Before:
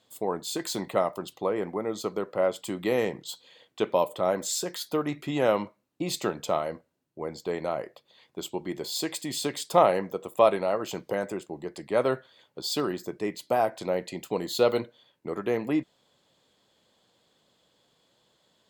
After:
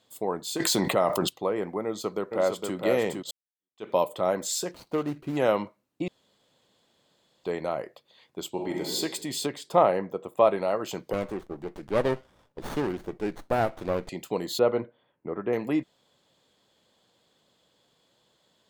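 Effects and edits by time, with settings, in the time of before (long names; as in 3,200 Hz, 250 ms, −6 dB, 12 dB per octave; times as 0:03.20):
0:00.60–0:01.29: envelope flattener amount 70%
0:01.85–0:02.76: delay throw 460 ms, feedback 10%, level −4 dB
0:03.31–0:03.90: fade in exponential
0:04.71–0:05.37: running median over 25 samples
0:06.08–0:07.44: fill with room tone
0:08.50–0:08.95: thrown reverb, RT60 1.2 s, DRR −0.5 dB
0:09.46–0:10.58: high-shelf EQ 3,400 Hz −11 dB
0:11.13–0:14.09: windowed peak hold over 17 samples
0:14.59–0:15.53: Bessel low-pass filter 1,700 Hz, order 4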